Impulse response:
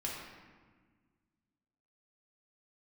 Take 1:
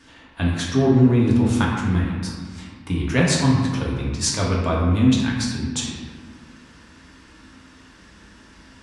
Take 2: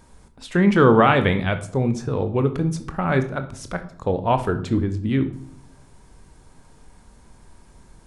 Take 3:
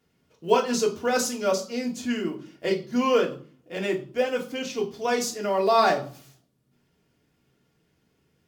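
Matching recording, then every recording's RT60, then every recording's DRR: 1; 1.5, 0.70, 0.45 s; -4.0, 8.0, -1.0 dB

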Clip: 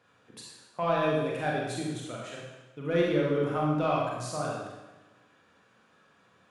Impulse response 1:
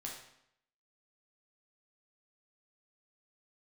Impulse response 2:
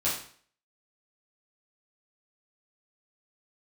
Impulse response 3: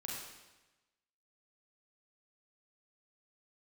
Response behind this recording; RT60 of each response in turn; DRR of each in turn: 3; 0.75, 0.50, 1.1 s; -2.5, -10.0, -3.5 dB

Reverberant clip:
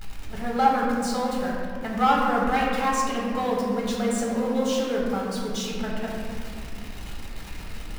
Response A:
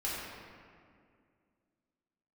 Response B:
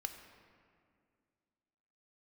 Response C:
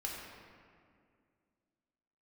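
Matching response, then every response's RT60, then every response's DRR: C; 2.2, 2.2, 2.2 s; -8.5, 5.5, -3.5 dB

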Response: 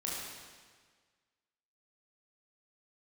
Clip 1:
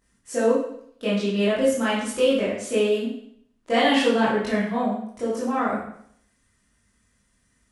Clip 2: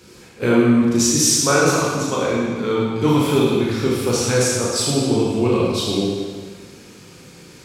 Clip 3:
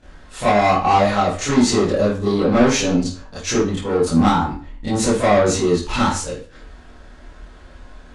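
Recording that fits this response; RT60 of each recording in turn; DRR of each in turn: 2; 0.65, 1.6, 0.40 s; -10.0, -5.5, -12.5 dB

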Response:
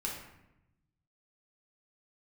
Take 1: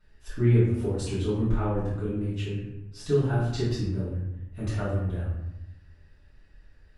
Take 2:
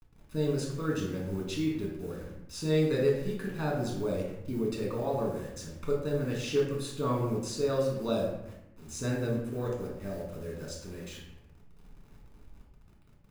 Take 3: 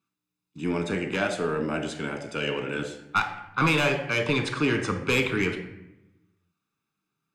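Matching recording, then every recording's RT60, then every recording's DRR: 2; 0.85, 0.85, 0.90 s; -12.5, -3.0, 5.0 dB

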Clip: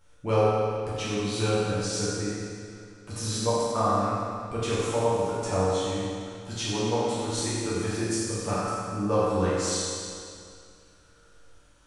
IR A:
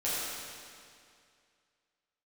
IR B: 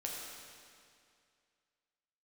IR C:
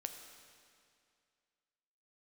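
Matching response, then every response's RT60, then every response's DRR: A; 2.3, 2.3, 2.3 s; -10.5, -3.0, 5.5 dB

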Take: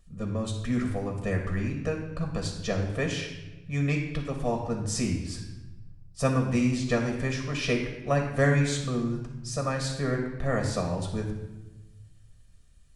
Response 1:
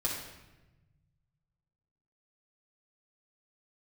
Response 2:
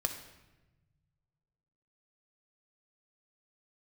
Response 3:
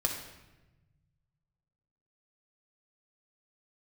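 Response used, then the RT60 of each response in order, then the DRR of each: 3; 1.1, 1.1, 1.1 s; -4.5, 5.0, 1.0 dB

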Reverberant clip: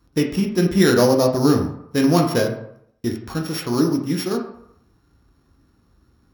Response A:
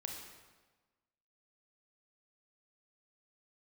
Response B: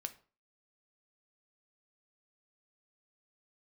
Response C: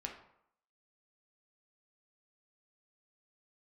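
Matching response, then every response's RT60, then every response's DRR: C; 1.3, 0.40, 0.70 s; 1.0, 8.5, 1.0 dB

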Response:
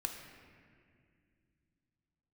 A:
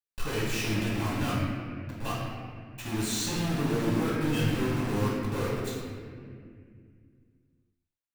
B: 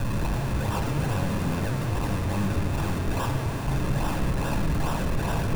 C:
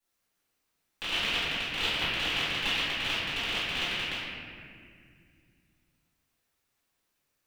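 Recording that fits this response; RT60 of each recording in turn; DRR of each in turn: B; 2.2, 2.2, 2.2 s; -6.5, 3.0, -13.5 dB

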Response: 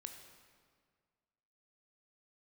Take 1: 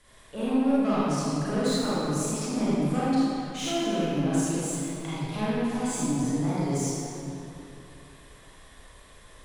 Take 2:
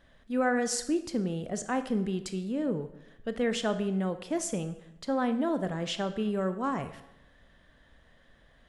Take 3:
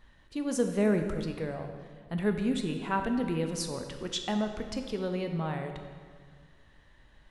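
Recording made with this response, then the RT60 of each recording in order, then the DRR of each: 3; 2.9, 0.85, 1.8 s; -10.5, 9.5, 5.0 dB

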